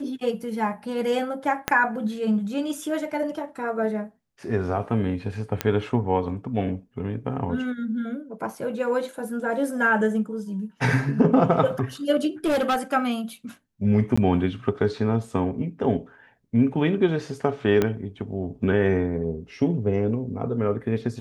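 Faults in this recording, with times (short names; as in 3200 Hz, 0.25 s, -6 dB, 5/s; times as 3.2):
1.68 pop -6 dBFS
5.61 pop -8 dBFS
12.45–12.77 clipped -18.5 dBFS
14.16–14.18 gap 15 ms
17.82 pop -9 dBFS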